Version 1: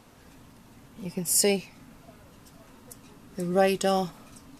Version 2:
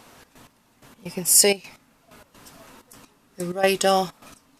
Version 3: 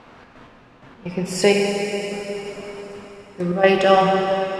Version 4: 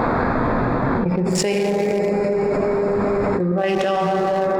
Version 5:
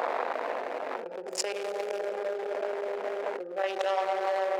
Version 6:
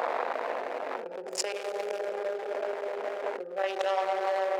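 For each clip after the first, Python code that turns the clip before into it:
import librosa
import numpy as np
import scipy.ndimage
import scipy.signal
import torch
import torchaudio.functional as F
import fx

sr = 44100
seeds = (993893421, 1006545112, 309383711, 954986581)

y1 = fx.low_shelf(x, sr, hz=320.0, db=-10.5)
y1 = fx.step_gate(y1, sr, bpm=128, pattern='xx.x...x.xx', floor_db=-12.0, edge_ms=4.5)
y1 = F.gain(torch.from_numpy(y1), 8.0).numpy()
y2 = scipy.signal.sosfilt(scipy.signal.butter(2, 2600.0, 'lowpass', fs=sr, output='sos'), y1)
y2 = fx.rev_plate(y2, sr, seeds[0], rt60_s=4.1, hf_ratio=0.9, predelay_ms=0, drr_db=-0.5)
y2 = F.gain(torch.from_numpy(y2), 4.5).numpy()
y3 = fx.wiener(y2, sr, points=15)
y3 = fx.env_flatten(y3, sr, amount_pct=100)
y3 = F.gain(torch.from_numpy(y3), -9.0).numpy()
y4 = fx.wiener(y3, sr, points=41)
y4 = scipy.signal.sosfilt(scipy.signal.butter(4, 530.0, 'highpass', fs=sr, output='sos'), y4)
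y4 = F.gain(torch.from_numpy(y4), -3.5).numpy()
y5 = fx.hum_notches(y4, sr, base_hz=50, count=8)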